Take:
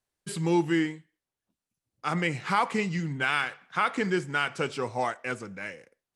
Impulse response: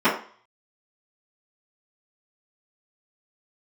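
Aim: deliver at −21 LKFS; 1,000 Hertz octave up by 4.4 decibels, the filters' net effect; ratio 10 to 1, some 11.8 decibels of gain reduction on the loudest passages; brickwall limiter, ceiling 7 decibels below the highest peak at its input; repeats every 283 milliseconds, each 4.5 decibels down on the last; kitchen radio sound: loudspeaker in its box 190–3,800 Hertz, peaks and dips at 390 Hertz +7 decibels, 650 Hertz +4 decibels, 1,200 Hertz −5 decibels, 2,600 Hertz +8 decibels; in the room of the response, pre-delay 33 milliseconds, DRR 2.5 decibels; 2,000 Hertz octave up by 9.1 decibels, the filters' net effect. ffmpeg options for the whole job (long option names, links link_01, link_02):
-filter_complex "[0:a]equalizer=frequency=1000:width_type=o:gain=4.5,equalizer=frequency=2000:width_type=o:gain=8.5,acompressor=threshold=-26dB:ratio=10,alimiter=limit=-20.5dB:level=0:latency=1,aecho=1:1:283|566|849|1132|1415|1698|1981|2264|2547:0.596|0.357|0.214|0.129|0.0772|0.0463|0.0278|0.0167|0.01,asplit=2[link_01][link_02];[1:a]atrim=start_sample=2205,adelay=33[link_03];[link_02][link_03]afir=irnorm=-1:irlink=0,volume=-22.5dB[link_04];[link_01][link_04]amix=inputs=2:normalize=0,highpass=190,equalizer=frequency=390:width_type=q:width=4:gain=7,equalizer=frequency=650:width_type=q:width=4:gain=4,equalizer=frequency=1200:width_type=q:width=4:gain=-5,equalizer=frequency=2600:width_type=q:width=4:gain=8,lowpass=frequency=3800:width=0.5412,lowpass=frequency=3800:width=1.3066,volume=7.5dB"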